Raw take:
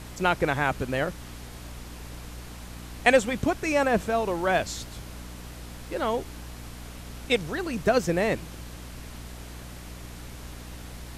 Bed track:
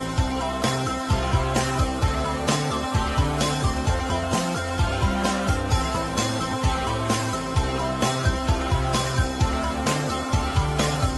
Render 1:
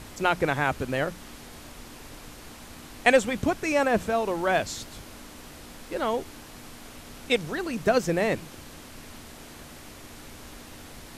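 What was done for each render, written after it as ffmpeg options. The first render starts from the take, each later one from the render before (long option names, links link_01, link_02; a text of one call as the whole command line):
ffmpeg -i in.wav -af "bandreject=frequency=60:width_type=h:width=6,bandreject=frequency=120:width_type=h:width=6,bandreject=frequency=180:width_type=h:width=6" out.wav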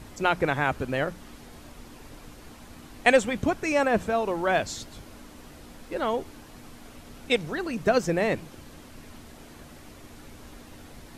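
ffmpeg -i in.wav -af "afftdn=noise_reduction=6:noise_floor=-46" out.wav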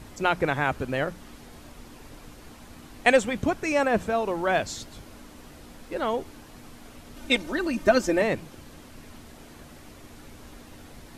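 ffmpeg -i in.wav -filter_complex "[0:a]asettb=1/sr,asplit=3[link_01][link_02][link_03];[link_01]atrim=end=7.164[link_04];[link_02]atrim=start=7.16:end=8.22,asetpts=PTS-STARTPTS,afade=type=in:duration=0.004:curve=qsin,afade=type=out:start_time=1.056:duration=0.004:curve=qsin,aecho=1:1:3.3:0.9,atrim=end_sample=46746[link_05];[link_03]atrim=start=8.216[link_06];[link_04][link_05]acrossfade=duration=0.004:curve1=hsin:curve2=qsin[link_07];[link_07][link_06]acrossfade=duration=0.004:curve1=qsin:curve2=hsin" out.wav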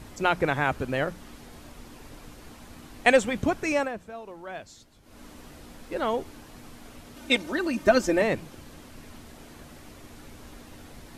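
ffmpeg -i in.wav -filter_complex "[0:a]asettb=1/sr,asplit=3[link_01][link_02][link_03];[link_01]atrim=end=7.064[link_04];[link_02]atrim=start=7.06:end=7.87,asetpts=PTS-STARTPTS,afade=type=in:duration=0.004:curve=qsin,afade=type=out:start_time=0.806:duration=0.004:curve=qsin,highpass=frequency=83:poles=1[link_05];[link_03]atrim=start=7.866[link_06];[link_04][link_05]acrossfade=duration=0.004:curve1=hsin:curve2=qsin[link_07];[link_07][link_06]acrossfade=duration=0.004:curve1=qsin:curve2=hsin,asplit=3[link_08][link_09][link_10];[link_08]atrim=end=3.95,asetpts=PTS-STARTPTS,afade=type=out:start_time=3.72:duration=0.23:silence=0.188365[link_11];[link_09]atrim=start=3.95:end=5.02,asetpts=PTS-STARTPTS,volume=-14.5dB[link_12];[link_10]atrim=start=5.02,asetpts=PTS-STARTPTS,afade=type=in:duration=0.23:silence=0.188365[link_13];[link_11][link_12][link_13]concat=n=3:v=0:a=1" out.wav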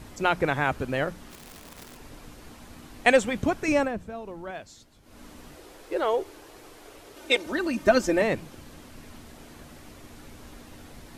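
ffmpeg -i in.wav -filter_complex "[0:a]asplit=3[link_01][link_02][link_03];[link_01]afade=type=out:start_time=1.3:duration=0.02[link_04];[link_02]aeval=exprs='(mod(94.4*val(0)+1,2)-1)/94.4':channel_layout=same,afade=type=in:start_time=1.3:duration=0.02,afade=type=out:start_time=1.96:duration=0.02[link_05];[link_03]afade=type=in:start_time=1.96:duration=0.02[link_06];[link_04][link_05][link_06]amix=inputs=3:normalize=0,asettb=1/sr,asplit=3[link_07][link_08][link_09];[link_07]atrim=end=3.684[link_10];[link_08]atrim=start=3.68:end=4.51,asetpts=PTS-STARTPTS,afade=type=in:duration=0.004:curve=qsin,afade=type=out:start_time=0.826:duration=0.004:curve=qsin,lowshelf=frequency=280:gain=10.5[link_11];[link_09]atrim=start=4.506[link_12];[link_10][link_11]acrossfade=duration=0.004:curve1=hsin:curve2=qsin[link_13];[link_13][link_12]acrossfade=duration=0.004:curve1=qsin:curve2=hsin,asettb=1/sr,asplit=3[link_14][link_15][link_16];[link_14]atrim=end=5.554[link_17];[link_15]atrim=start=5.55:end=7.46,asetpts=PTS-STARTPTS,afade=type=in:duration=0.004:curve=qsin,afade=type=out:start_time=1.906:duration=0.004:curve=qsin,lowshelf=frequency=290:width_type=q:width=3:gain=-7.5[link_18];[link_16]atrim=start=7.456[link_19];[link_17][link_18]acrossfade=duration=0.004:curve1=hsin:curve2=qsin[link_20];[link_20][link_19]acrossfade=duration=0.004:curve1=qsin:curve2=hsin" out.wav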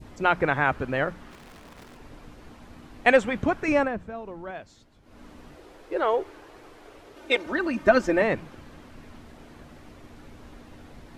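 ffmpeg -i in.wav -af "adynamicequalizer=threshold=0.0141:dfrequency=1500:dqfactor=0.77:tfrequency=1500:tqfactor=0.77:attack=5:release=100:ratio=0.375:range=2.5:mode=boostabove:tftype=bell,lowpass=frequency=2500:poles=1" out.wav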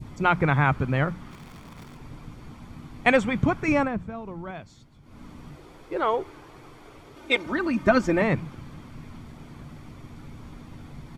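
ffmpeg -i in.wav -af "equalizer=frequency=140:width_type=o:width=1:gain=9.5,aecho=1:1:0.9:0.32" out.wav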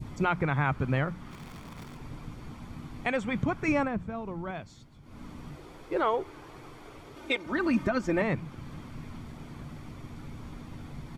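ffmpeg -i in.wav -af "alimiter=limit=-16.5dB:level=0:latency=1:release=398" out.wav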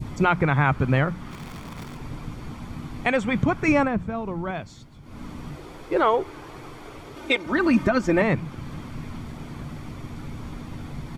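ffmpeg -i in.wav -af "volume=7dB" out.wav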